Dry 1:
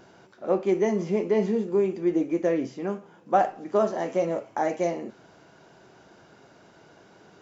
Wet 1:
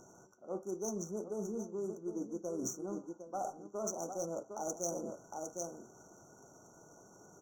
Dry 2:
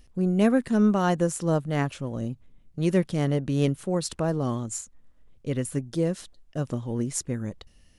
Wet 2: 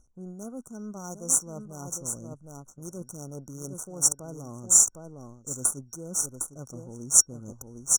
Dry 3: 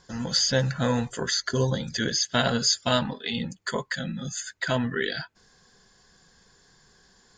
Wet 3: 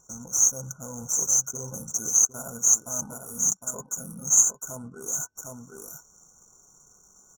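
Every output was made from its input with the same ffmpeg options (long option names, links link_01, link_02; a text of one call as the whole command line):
ffmpeg -i in.wav -filter_complex "[0:a]aecho=1:1:758:0.282,areverse,acompressor=threshold=-33dB:ratio=5,areverse,aexciter=amount=15.1:drive=5.2:freq=2100,asplit=2[link_01][link_02];[link_02]aeval=exprs='sgn(val(0))*max(abs(val(0))-0.0106,0)':channel_layout=same,volume=-9dB[link_03];[link_01][link_03]amix=inputs=2:normalize=0,adynamicsmooth=sensitivity=3:basefreq=2500,afftfilt=real='re*(1-between(b*sr/4096,1500,5600))':imag='im*(1-between(b*sr/4096,1500,5600))':win_size=4096:overlap=0.75,volume=-6.5dB" out.wav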